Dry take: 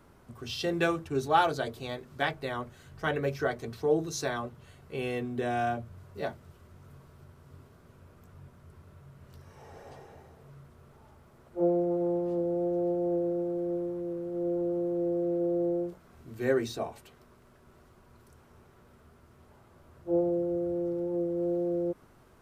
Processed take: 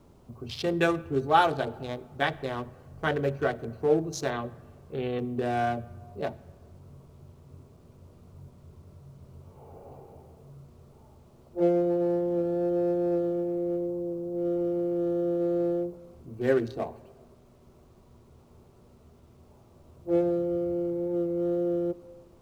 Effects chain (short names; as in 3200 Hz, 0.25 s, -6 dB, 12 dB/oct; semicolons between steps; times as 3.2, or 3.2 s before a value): Wiener smoothing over 25 samples; 4.3–5.19 steep low-pass 4300 Hz 96 dB/oct; requantised 12-bit, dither none; reverb RT60 1.7 s, pre-delay 20 ms, DRR 20 dB; gain +3 dB